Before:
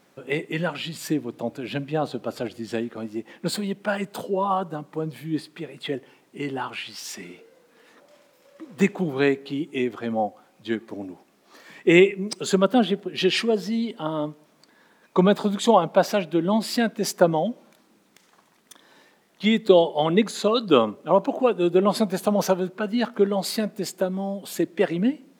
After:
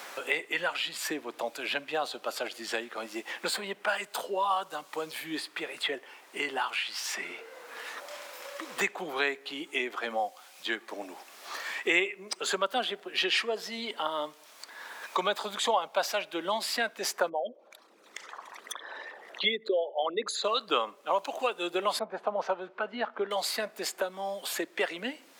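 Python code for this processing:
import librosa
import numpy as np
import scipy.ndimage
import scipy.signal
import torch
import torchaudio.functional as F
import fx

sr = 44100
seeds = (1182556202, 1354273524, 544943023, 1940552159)

y = fx.envelope_sharpen(x, sr, power=2.0, at=(17.28, 20.43), fade=0.02)
y = fx.lowpass(y, sr, hz=1200.0, slope=12, at=(21.99, 23.31))
y = scipy.signal.sosfilt(scipy.signal.butter(2, 830.0, 'highpass', fs=sr, output='sos'), y)
y = fx.band_squash(y, sr, depth_pct=70)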